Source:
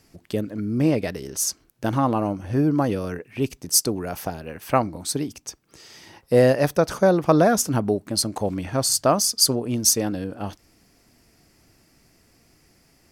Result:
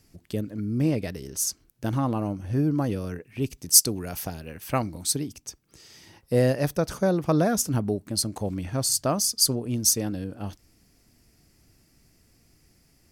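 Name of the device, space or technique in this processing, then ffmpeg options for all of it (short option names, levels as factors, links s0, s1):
smiley-face EQ: -filter_complex "[0:a]lowshelf=f=170:g=7.5,equalizer=f=870:t=o:w=2:g=-3,highshelf=f=5800:g=4.5,asplit=3[s0][s1][s2];[s0]afade=t=out:st=3.57:d=0.02[s3];[s1]adynamicequalizer=threshold=0.0141:dfrequency=1700:dqfactor=0.7:tfrequency=1700:tqfactor=0.7:attack=5:release=100:ratio=0.375:range=3:mode=boostabove:tftype=highshelf,afade=t=in:st=3.57:d=0.02,afade=t=out:st=5.15:d=0.02[s4];[s2]afade=t=in:st=5.15:d=0.02[s5];[s3][s4][s5]amix=inputs=3:normalize=0,volume=0.531"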